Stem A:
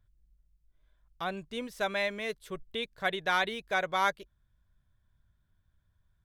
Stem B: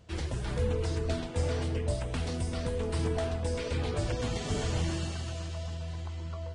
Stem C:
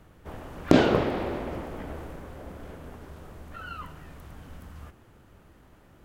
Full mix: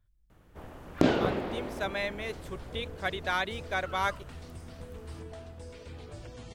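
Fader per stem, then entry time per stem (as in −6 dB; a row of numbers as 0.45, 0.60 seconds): −2.0, −13.5, −5.5 decibels; 0.00, 2.15, 0.30 seconds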